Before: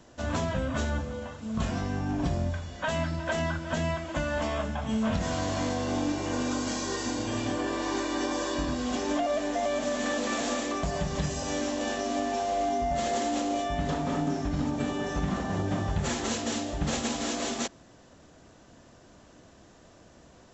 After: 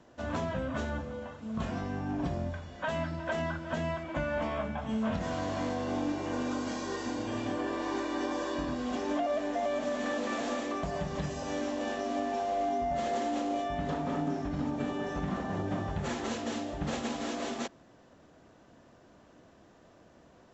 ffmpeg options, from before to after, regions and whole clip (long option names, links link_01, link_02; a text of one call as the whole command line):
ffmpeg -i in.wav -filter_complex "[0:a]asettb=1/sr,asplit=3[link_01][link_02][link_03];[link_01]atrim=end=4.034[link_04];[link_02]atrim=start=4.03:end=4.78,asetpts=PTS-STARTPTS,afade=type=in:duration=0.004:curve=qsin,afade=type=out:start_time=0.746:duration=0.004:curve=qsin,bass=frequency=250:gain=2,treble=frequency=4000:gain=-5,aeval=exprs='val(0)+0.00501*sin(2*PI*2300*n/s)':channel_layout=same,asplit=2[link_05][link_06];[link_06]adelay=19,volume=-12dB[link_07];[link_05][link_07]amix=inputs=2:normalize=0,atrim=end_sample=33075[link_08];[link_03]atrim=start=4.776[link_09];[link_04][link_08]acrossfade=duration=0.004:curve1=hsin:curve2=qsin[link_10];[link_10][link_09]acrossfade=duration=0.004:curve1=qsin:curve2=hsin,lowpass=frequency=2300:poles=1,lowshelf=frequency=100:gain=-8.5,volume=-2dB" out.wav